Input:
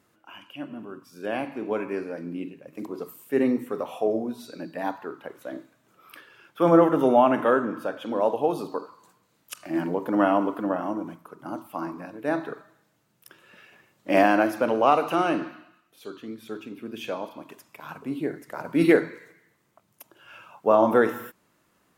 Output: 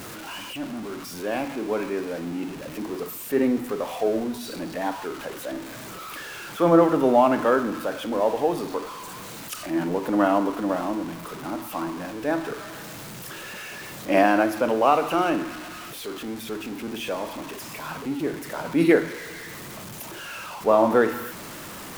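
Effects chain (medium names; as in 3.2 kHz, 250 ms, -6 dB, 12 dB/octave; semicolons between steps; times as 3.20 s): jump at every zero crossing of -32.5 dBFS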